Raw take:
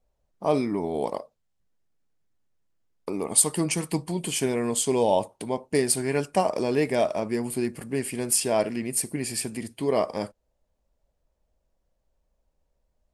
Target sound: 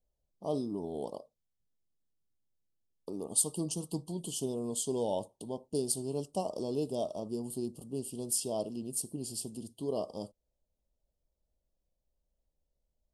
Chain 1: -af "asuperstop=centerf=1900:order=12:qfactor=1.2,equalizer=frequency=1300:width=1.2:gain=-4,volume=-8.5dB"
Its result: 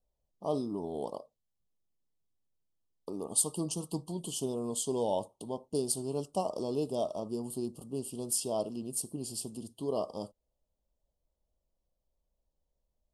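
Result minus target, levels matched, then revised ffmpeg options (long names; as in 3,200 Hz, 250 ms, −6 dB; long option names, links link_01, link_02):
1,000 Hz band +2.5 dB
-af "asuperstop=centerf=1900:order=12:qfactor=1.2,equalizer=frequency=1300:width=1.2:gain=-12,volume=-8.5dB"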